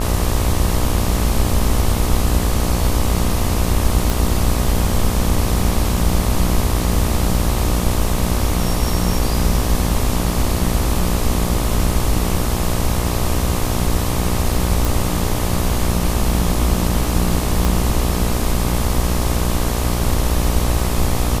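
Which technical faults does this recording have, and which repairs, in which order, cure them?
buzz 60 Hz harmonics 21 -22 dBFS
4.1 pop
14.85 pop
17.65 pop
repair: de-click; de-hum 60 Hz, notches 21

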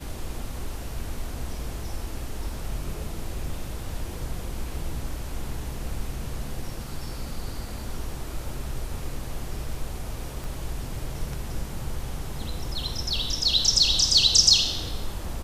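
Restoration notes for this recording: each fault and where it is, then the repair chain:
10.44 pop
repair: de-click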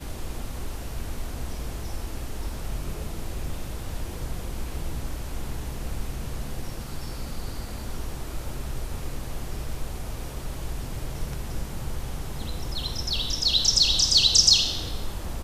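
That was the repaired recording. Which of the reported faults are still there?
10.44 pop

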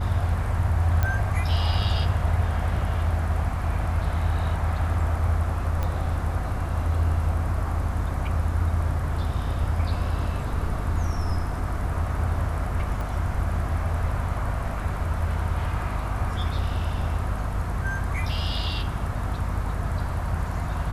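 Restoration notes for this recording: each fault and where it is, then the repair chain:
hum 50 Hz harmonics 5 -30 dBFS
1.03 pop -11 dBFS
5.83 pop -16 dBFS
13.01 pop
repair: de-click; de-hum 50 Hz, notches 5

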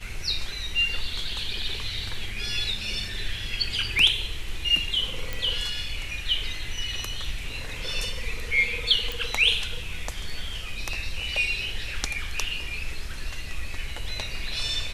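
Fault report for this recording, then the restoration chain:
5.33 pop
9.12 pop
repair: de-click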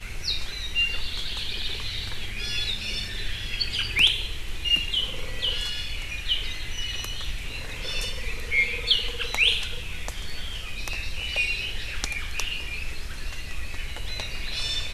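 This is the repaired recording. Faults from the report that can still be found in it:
none

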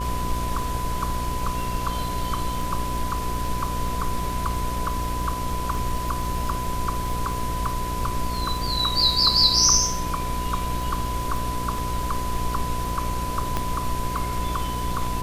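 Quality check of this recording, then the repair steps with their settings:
buzz 60 Hz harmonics 12 -30 dBFS
crackle 31/s -30 dBFS
tone 1000 Hz -29 dBFS
13.57 pop -10 dBFS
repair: de-click; de-hum 60 Hz, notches 12; notch 1000 Hz, Q 30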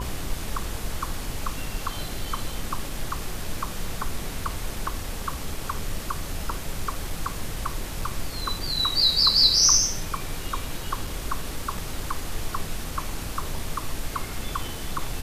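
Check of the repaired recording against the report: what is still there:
13.57 pop

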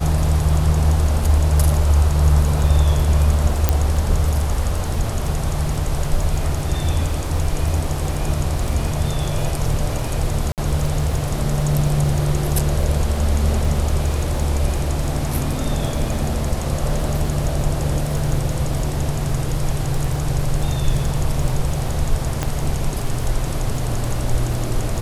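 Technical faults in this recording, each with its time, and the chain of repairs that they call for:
crackle 21/s -25 dBFS
3.69 pop -2 dBFS
10.52–10.58 gap 58 ms
22.43 pop -7 dBFS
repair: de-click; interpolate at 10.52, 58 ms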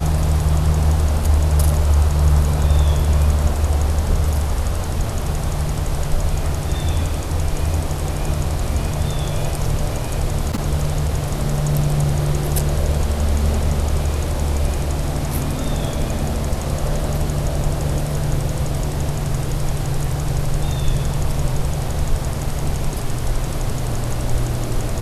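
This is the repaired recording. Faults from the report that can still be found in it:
22.43 pop

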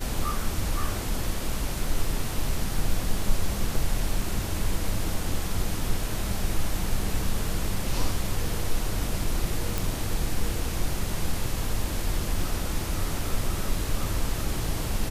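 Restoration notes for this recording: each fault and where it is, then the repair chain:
9.78 pop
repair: de-click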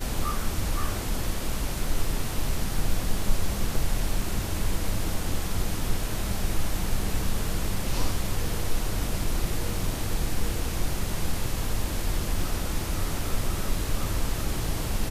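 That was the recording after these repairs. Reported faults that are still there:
none

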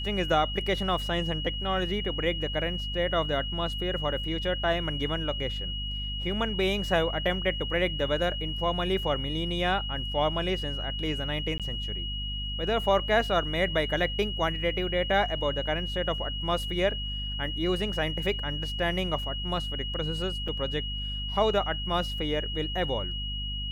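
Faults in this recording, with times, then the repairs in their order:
hum 50 Hz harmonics 5 -35 dBFS
tone 2900 Hz -34 dBFS
11.58–11.6 gap 17 ms
20.48 gap 5 ms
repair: de-hum 50 Hz, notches 5; notch 2900 Hz, Q 30; interpolate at 11.58, 17 ms; interpolate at 20.48, 5 ms

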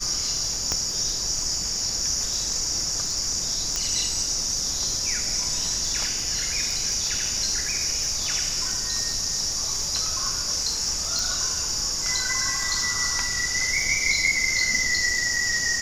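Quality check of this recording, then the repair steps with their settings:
crackle 26/s -29 dBFS
0.72 pop -10 dBFS
3.76 pop -11 dBFS
11.19 pop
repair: de-click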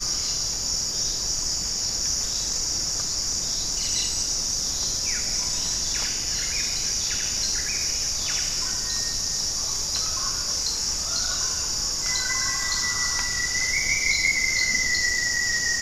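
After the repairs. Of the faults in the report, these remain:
3.76 pop

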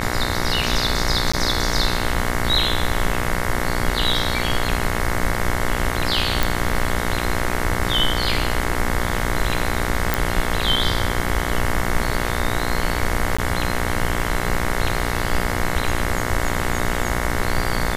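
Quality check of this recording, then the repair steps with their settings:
buzz 60 Hz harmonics 37 -25 dBFS
1.32–1.33 gap 15 ms
6.43 pop
10.14 pop
13.37–13.38 gap 15 ms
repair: de-click; de-hum 60 Hz, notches 37; interpolate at 1.32, 15 ms; interpolate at 13.37, 15 ms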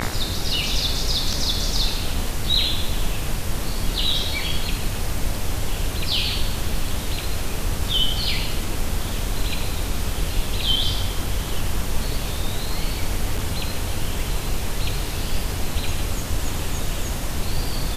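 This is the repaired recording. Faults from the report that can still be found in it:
none

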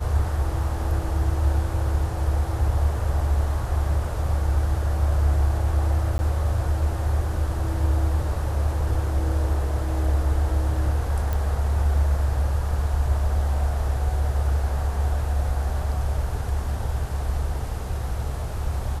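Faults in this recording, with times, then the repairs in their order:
6.18–6.19 gap 10 ms
11.33 pop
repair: de-click; interpolate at 6.18, 10 ms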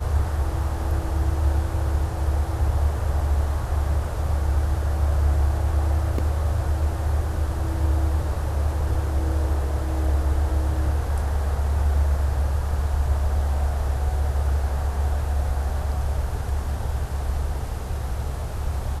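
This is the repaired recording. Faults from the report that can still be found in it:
none

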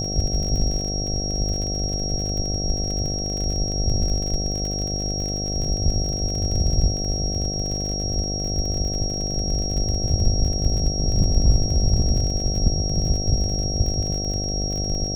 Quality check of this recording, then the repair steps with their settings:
buzz 50 Hz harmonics 15 -28 dBFS
crackle 44/s -28 dBFS
tone 5600 Hz -27 dBFS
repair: de-click; de-hum 50 Hz, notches 15; notch 5600 Hz, Q 30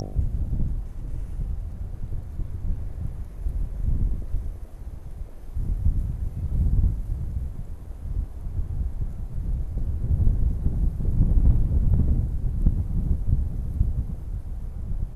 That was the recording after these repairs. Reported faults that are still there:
none

